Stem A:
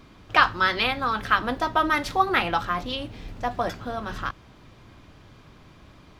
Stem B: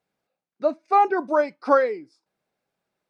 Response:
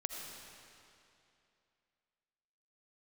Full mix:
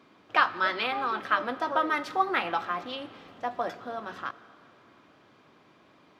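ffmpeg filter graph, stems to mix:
-filter_complex "[0:a]highshelf=frequency=4400:gain=-10,volume=-5.5dB,asplit=2[link_01][link_02];[link_02]volume=-11.5dB[link_03];[1:a]volume=-17.5dB[link_04];[2:a]atrim=start_sample=2205[link_05];[link_03][link_05]afir=irnorm=-1:irlink=0[link_06];[link_01][link_04][link_06]amix=inputs=3:normalize=0,highpass=270"

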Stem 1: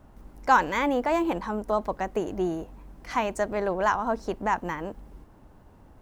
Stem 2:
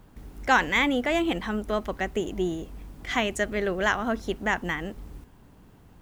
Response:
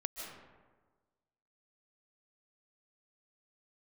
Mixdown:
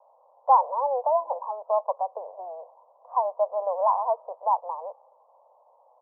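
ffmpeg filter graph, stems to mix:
-filter_complex "[0:a]volume=3dB[link_01];[1:a]aphaser=in_gain=1:out_gain=1:delay=3.2:decay=0.8:speed=0.37:type=sinusoidal,adelay=0.6,volume=-20dB,asplit=2[link_02][link_03];[link_03]volume=-6.5dB[link_04];[2:a]atrim=start_sample=2205[link_05];[link_04][link_05]afir=irnorm=-1:irlink=0[link_06];[link_01][link_02][link_06]amix=inputs=3:normalize=0,asuperpass=centerf=740:order=12:qfactor=1.3"

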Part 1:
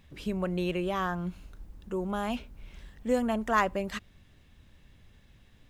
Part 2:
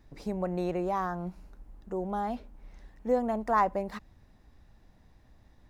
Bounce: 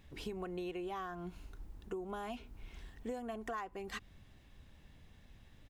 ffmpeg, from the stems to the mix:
ffmpeg -i stem1.wav -i stem2.wav -filter_complex "[0:a]volume=-3dB[link_01];[1:a]adelay=3,volume=-6.5dB[link_02];[link_01][link_02]amix=inputs=2:normalize=0,acompressor=threshold=-38dB:ratio=16" out.wav

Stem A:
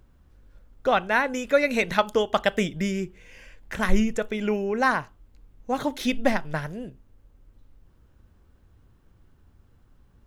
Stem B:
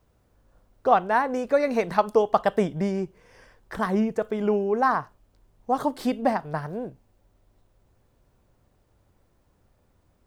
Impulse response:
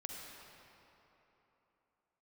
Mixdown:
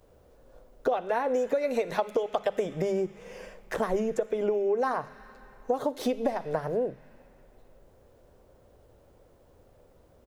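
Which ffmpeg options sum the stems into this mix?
-filter_complex "[0:a]highshelf=frequency=3000:gain=10,volume=-9dB,asplit=2[link_01][link_02];[link_02]volume=-11.5dB[link_03];[1:a]equalizer=frequency=510:width_type=o:width=1.2:gain=13.5,bandreject=frequency=50:width_type=h:width=6,bandreject=frequency=100:width_type=h:width=6,bandreject=frequency=150:width_type=h:width=6,bandreject=frequency=200:width_type=h:width=6,acompressor=threshold=-19dB:ratio=6,adelay=8.7,volume=0.5dB,asplit=2[link_04][link_05];[link_05]apad=whole_len=452579[link_06];[link_01][link_06]sidechaincompress=threshold=-26dB:ratio=8:attack=5.4:release=292[link_07];[2:a]atrim=start_sample=2205[link_08];[link_03][link_08]afir=irnorm=-1:irlink=0[link_09];[link_07][link_04][link_09]amix=inputs=3:normalize=0,acompressor=threshold=-33dB:ratio=1.5"

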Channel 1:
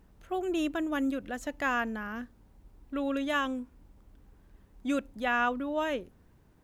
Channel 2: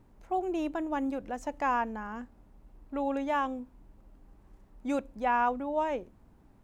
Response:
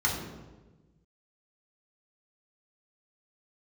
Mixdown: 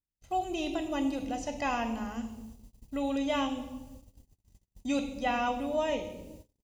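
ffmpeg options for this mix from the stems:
-filter_complex "[0:a]volume=1dB,asplit=2[link_01][link_02];[link_02]volume=-24dB[link_03];[1:a]lowshelf=frequency=96:gain=2.5,aexciter=amount=7.7:drive=8.5:freq=2200,adelay=1.7,volume=-4dB,asplit=2[link_04][link_05];[link_05]volume=-9.5dB[link_06];[2:a]atrim=start_sample=2205[link_07];[link_03][link_06]amix=inputs=2:normalize=0[link_08];[link_08][link_07]afir=irnorm=-1:irlink=0[link_09];[link_01][link_04][link_09]amix=inputs=3:normalize=0,acrossover=split=4200[link_10][link_11];[link_11]acompressor=threshold=-58dB:ratio=4:attack=1:release=60[link_12];[link_10][link_12]amix=inputs=2:normalize=0,agate=range=-41dB:threshold=-47dB:ratio=16:detection=peak,equalizer=frequency=1500:width=0.67:gain=-10.5"

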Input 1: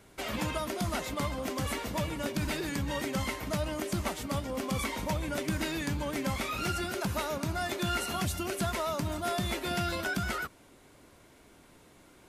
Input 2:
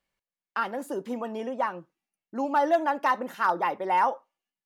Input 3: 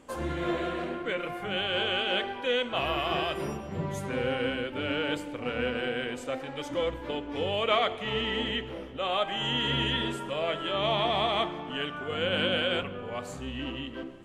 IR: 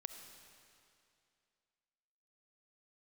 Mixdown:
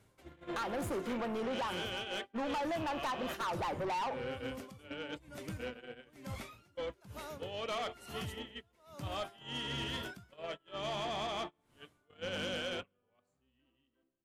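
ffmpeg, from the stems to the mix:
-filter_complex "[0:a]equalizer=frequency=110:width_type=o:width=0.77:gain=8.5,aeval=exprs='val(0)*pow(10,-36*(0.5-0.5*cos(2*PI*1.1*n/s))/20)':channel_layout=same,volume=-10.5dB[link_01];[1:a]volume=3dB[link_02];[2:a]volume=-7dB[link_03];[link_02][link_03]amix=inputs=2:normalize=0,agate=range=-34dB:threshold=-35dB:ratio=16:detection=peak,acompressor=threshold=-25dB:ratio=6,volume=0dB[link_04];[link_01][link_04]amix=inputs=2:normalize=0,asoftclip=type=tanh:threshold=-33dB"

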